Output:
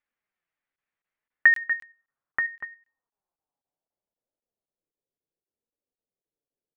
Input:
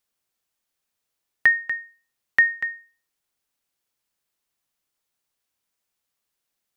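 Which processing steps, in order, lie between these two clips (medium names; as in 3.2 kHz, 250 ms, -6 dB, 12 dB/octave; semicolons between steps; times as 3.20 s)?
flange 0.69 Hz, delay 3.3 ms, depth 4.2 ms, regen +63%; low-pass sweep 2 kHz -> 460 Hz, 1.17–4.95 s; crackling interface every 0.26 s, samples 1024, zero, from 0.76 s; trim -1.5 dB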